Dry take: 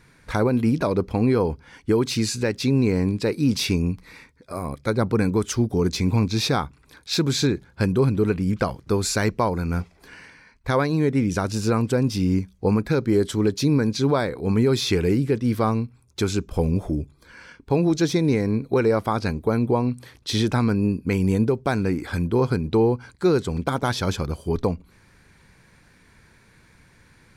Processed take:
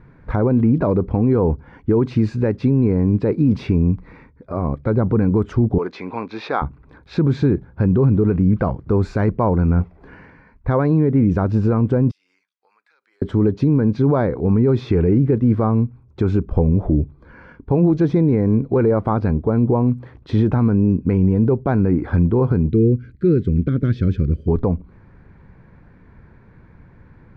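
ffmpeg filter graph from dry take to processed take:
-filter_complex "[0:a]asettb=1/sr,asplit=3[a][b][c];[a]atrim=end=5.784[d];[b]atrim=start=5.78:end=6.62,asetpts=PTS-STARTPTS,afade=t=in:d=0.004:c=qsin,afade=t=out:st=0.836:d=0.004:c=qsin,highpass=450,lowpass=4.5k,tiltshelf=f=890:g=-5.5[e];[c]atrim=start=6.616[f];[d][e]acrossfade=d=0.004:c1=hsin:c2=qsin[g];[g][f]acrossfade=d=0.004:c1=qsin:c2=hsin,asettb=1/sr,asplit=3[h][i][j];[h]atrim=end=12.114[k];[i]atrim=start=12.11:end=13.22,asetpts=PTS-STARTPTS,afade=t=in:d=0.004:c=qsin,afade=t=out:st=1.106:d=0.004:c=qsin,highpass=1.4k,acompressor=threshold=-42dB:ratio=6:attack=3.2:release=140:knee=1:detection=peak,aderivative[l];[j]atrim=start=13.216[m];[k][l]acrossfade=d=0.004:c1=hsin:c2=qsin[n];[n][m]acrossfade=d=0.004:c1=qsin:c2=hsin,asettb=1/sr,asplit=3[o][p][q];[o]atrim=end=22.694[r];[p]atrim=start=22.69:end=24.48,asetpts=PTS-STARTPTS,afade=t=in:d=0.004:c=qsin,afade=t=out:st=1.786:d=0.004:c=qsin,asuperstop=centerf=850:order=4:qfactor=0.54,highshelf=f=7.5k:g=-8.5[s];[q]atrim=start=24.476[t];[r][s]acrossfade=d=0.004:c1=hsin:c2=qsin[u];[u][t]acrossfade=d=0.004:c1=qsin:c2=hsin,lowpass=1.2k,lowshelf=f=270:g=5.5,alimiter=limit=-13dB:level=0:latency=1:release=42,volume=5.5dB"

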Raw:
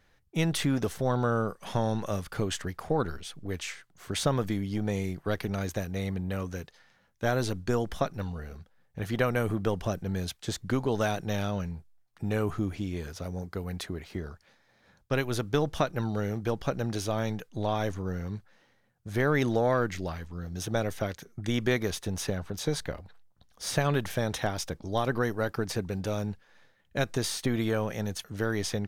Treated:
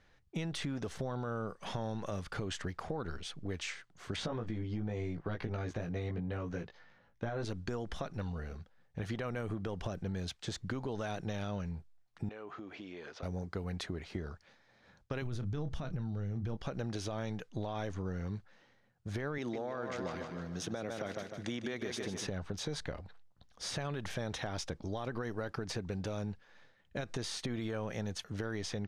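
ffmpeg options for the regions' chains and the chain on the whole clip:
-filter_complex "[0:a]asettb=1/sr,asplit=3[a][b][c];[a]atrim=end=4.164[d];[b]atrim=start=4.16:end=7.45,asetpts=PTS-STARTPTS,afade=t=in:d=0.004:c=qsin,afade=t=out:st=3.286:d=0.004:c=qsin,aemphasis=mode=reproduction:type=75fm,asplit=2[e][f];[f]adelay=18,volume=-3dB[g];[e][g]amix=inputs=2:normalize=0,atrim=end_sample=145089[h];[c]atrim=start=7.446[i];[d][h]acrossfade=d=0.004:c1=hsin:c2=qsin[j];[j][i]acrossfade=d=0.004:c1=qsin:c2=hsin,asettb=1/sr,asplit=3[k][l][m];[k]atrim=end=12.294[n];[l]atrim=start=12.29:end=13.23,asetpts=PTS-STARTPTS,afade=t=in:d=0.004:c=qsin,afade=t=out:st=0.936:d=0.004:c=qsin,highpass=380,lowpass=3.8k,acompressor=threshold=-41dB:ratio=6:attack=3.2:release=140:knee=1:detection=peak[o];[m]atrim=start=13.226[p];[n][o]acrossfade=d=0.004:c1=hsin:c2=qsin[q];[q][p]acrossfade=d=0.004:c1=qsin:c2=hsin,asettb=1/sr,asplit=3[r][s][t];[r]atrim=end=15.224[u];[s]atrim=start=15.22:end=16.57,asetpts=PTS-STARTPTS,afade=t=in:d=0.004:c=qsin,afade=t=out:st=1.346:d=0.004:c=qsin,bass=f=250:g=13,treble=f=4k:g=0,asplit=2[v][w];[w]adelay=31,volume=-13.5dB[x];[v][x]amix=inputs=2:normalize=0,atrim=end_sample=59535[y];[t]atrim=start=16.566[z];[u][y]acrossfade=d=0.004:c1=hsin:c2=qsin[aa];[aa][z]acrossfade=d=0.004:c1=qsin:c2=hsin,asettb=1/sr,asplit=3[ab][ac][ad];[ab]atrim=end=19.384[ae];[ac]atrim=start=19.38:end=22.27,asetpts=PTS-STARTPTS,afade=t=in:d=0.004:c=qsin,afade=t=out:st=2.886:d=0.004:c=qsin,highpass=170,aecho=1:1:152|304|456|608|760:0.376|0.169|0.0761|0.0342|0.0154,atrim=end_sample=127449[af];[ad]atrim=start=22.266[ag];[ae][af]acrossfade=d=0.004:c1=hsin:c2=qsin[ah];[ah][ag]acrossfade=d=0.004:c1=qsin:c2=hsin,alimiter=limit=-22.5dB:level=0:latency=1:release=78,acompressor=threshold=-33dB:ratio=6,lowpass=6.6k,volume=-1dB"

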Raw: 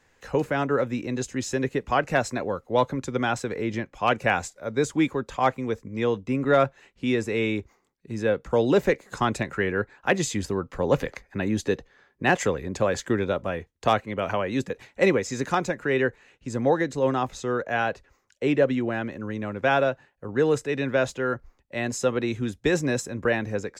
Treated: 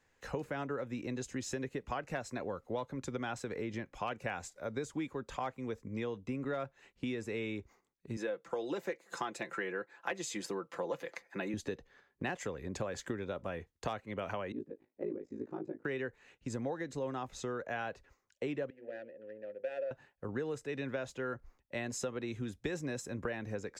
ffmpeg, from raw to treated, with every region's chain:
-filter_complex "[0:a]asettb=1/sr,asplit=3[a][b][c];[a]atrim=end=8.174[d];[b]atrim=start=8.17:end=11.54,asetpts=PTS-STARTPTS,afade=t=in:d=0.004:c=qsin,afade=t=out:st=3.366:d=0.004:c=qsin,highpass=310,aecho=1:1:5.9:0.55,atrim=end_sample=148617[e];[c]atrim=start=11.536[f];[d][e]acrossfade=d=0.004:c1=hsin:c2=qsin[g];[g][f]acrossfade=d=0.004:c1=qsin:c2=hsin,asettb=1/sr,asplit=3[h][i][j];[h]atrim=end=14.524[k];[i]atrim=start=14.52:end=15.85,asetpts=PTS-STARTPTS,afade=t=in:d=0.004:c=qsin,afade=t=out:st=1.326:d=0.004:c=qsin,bandpass=f=320:t=q:w=3.4,aeval=exprs='val(0)*sin(2*PI*27*n/s)':c=same,asplit=2[l][m];[m]adelay=19,volume=-4.5dB[n];[l][n]amix=inputs=2:normalize=0,atrim=end_sample=58653[o];[j]atrim=start=15.846[p];[k][o]acrossfade=d=0.004:c1=hsin:c2=qsin[q];[q][p]acrossfade=d=0.004:c1=qsin:c2=hsin,asettb=1/sr,asplit=3[r][s][t];[r]atrim=end=18.704[u];[s]atrim=start=18.7:end=19.91,asetpts=PTS-STARTPTS,afade=t=in:d=0.004:c=qsin,afade=t=out:st=1.206:d=0.004:c=qsin,bandreject=f=50:t=h:w=6,bandreject=f=100:t=h:w=6,bandreject=f=150:t=h:w=6,bandreject=f=200:t=h:w=6,bandreject=f=250:t=h:w=6,bandreject=f=300:t=h:w=6,bandreject=f=350:t=h:w=6,bandreject=f=400:t=h:w=6,bandreject=f=450:t=h:w=6,bandreject=f=500:t=h:w=6,adynamicsmooth=sensitivity=2.5:basefreq=560,asplit=3[v][w][x];[v]bandpass=f=530:t=q:w=8,volume=0dB[y];[w]bandpass=f=1.84k:t=q:w=8,volume=-6dB[z];[x]bandpass=f=2.48k:t=q:w=8,volume=-9dB[aa];[y][z][aa]amix=inputs=3:normalize=0[ab];[t]atrim=start=19.906[ac];[u][ab]acrossfade=d=0.004:c1=hsin:c2=qsin[ad];[ad][ac]acrossfade=d=0.004:c1=qsin:c2=hsin,agate=range=-6dB:threshold=-53dB:ratio=16:detection=peak,acompressor=threshold=-31dB:ratio=6,volume=-4dB"

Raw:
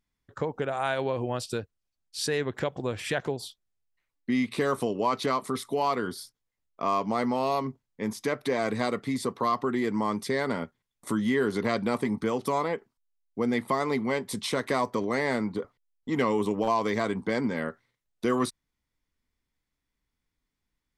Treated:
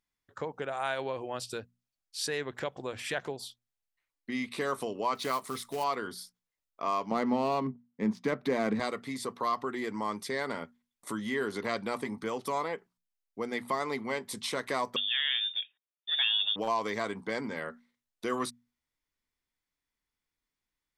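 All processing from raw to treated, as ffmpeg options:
-filter_complex "[0:a]asettb=1/sr,asplit=3[a][b][c];[a]atrim=end=5.154[d];[b]atrim=start=5.15:end=5.84,asetpts=PTS-STARTPTS,afade=t=in:d=0.004:c=qsin,afade=t=out:st=0.686:d=0.004:c=qsin,asubboost=boost=8.5:cutoff=160,acrusher=bits=4:mode=log:mix=0:aa=0.000001[e];[c]atrim=start=5.836[f];[d][e]acrossfade=d=0.004:c1=hsin:c2=qsin[g];[g][f]acrossfade=d=0.004:c1=qsin:c2=hsin,asettb=1/sr,asplit=3[h][i][j];[h]atrim=end=7.114[k];[i]atrim=start=7.11:end=8.8,asetpts=PTS-STARTPTS,afade=t=in:d=0.004:c=qsin,afade=t=out:st=1.686:d=0.004:c=qsin,highpass=f=180:t=q:w=2.1,adynamicsmooth=sensitivity=6.5:basefreq=2.3k,lowshelf=f=260:g=10.5[l];[j]atrim=start=8.796[m];[k][l]acrossfade=d=0.004:c1=hsin:c2=qsin[n];[n][m]acrossfade=d=0.004:c1=qsin:c2=hsin,asettb=1/sr,asplit=3[o][p][q];[o]atrim=end=14.964[r];[p]atrim=start=14.96:end=16.56,asetpts=PTS-STARTPTS,afade=t=in:d=0.004:c=qsin,afade=t=out:st=1.596:d=0.004:c=qsin,highpass=120,lowpass=f=3.2k:t=q:w=0.5098,lowpass=f=3.2k:t=q:w=0.6013,lowpass=f=3.2k:t=q:w=0.9,lowpass=f=3.2k:t=q:w=2.563,afreqshift=-3800[s];[q]atrim=start=16.556[t];[r][s]acrossfade=d=0.004:c1=hsin:c2=qsin[u];[u][t]acrossfade=d=0.004:c1=qsin:c2=hsin,lowshelf=f=400:g=-8.5,bandreject=f=60:t=h:w=6,bandreject=f=120:t=h:w=6,bandreject=f=180:t=h:w=6,bandreject=f=240:t=h:w=6,volume=-2.5dB"

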